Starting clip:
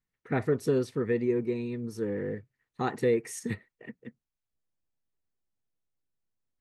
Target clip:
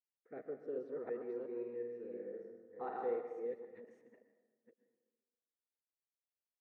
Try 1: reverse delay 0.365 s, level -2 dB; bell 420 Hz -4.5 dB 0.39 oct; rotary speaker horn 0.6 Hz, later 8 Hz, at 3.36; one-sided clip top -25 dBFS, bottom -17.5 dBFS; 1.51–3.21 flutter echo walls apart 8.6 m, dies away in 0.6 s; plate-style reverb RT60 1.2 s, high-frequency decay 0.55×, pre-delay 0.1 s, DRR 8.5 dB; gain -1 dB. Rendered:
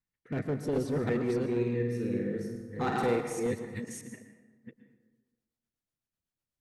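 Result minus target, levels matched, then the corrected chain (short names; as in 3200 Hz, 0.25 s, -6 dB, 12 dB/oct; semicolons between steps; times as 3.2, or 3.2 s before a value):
500 Hz band -2.5 dB
reverse delay 0.365 s, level -2 dB; ladder band-pass 640 Hz, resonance 35%; bell 420 Hz -4.5 dB 0.39 oct; rotary speaker horn 0.6 Hz, later 8 Hz, at 3.36; one-sided clip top -25 dBFS, bottom -17.5 dBFS; 1.51–3.21 flutter echo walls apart 8.6 m, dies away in 0.6 s; plate-style reverb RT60 1.2 s, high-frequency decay 0.55×, pre-delay 0.1 s, DRR 8.5 dB; gain -1 dB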